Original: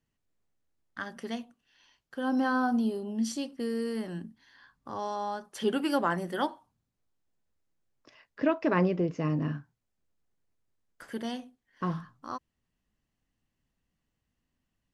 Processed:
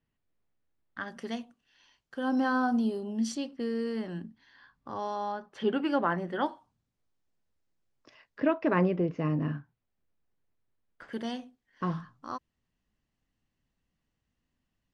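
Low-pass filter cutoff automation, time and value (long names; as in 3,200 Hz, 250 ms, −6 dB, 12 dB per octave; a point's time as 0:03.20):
3,500 Hz
from 0:01.08 8,400 Hz
from 0:03.35 4,700 Hz
from 0:05.32 2,900 Hz
from 0:06.46 7,300 Hz
from 0:08.40 3,400 Hz
from 0:11.13 6,900 Hz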